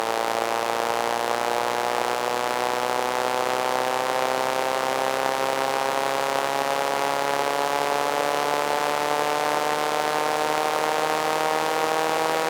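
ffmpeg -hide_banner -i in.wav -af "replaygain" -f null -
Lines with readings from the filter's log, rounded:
track_gain = +7.7 dB
track_peak = 0.333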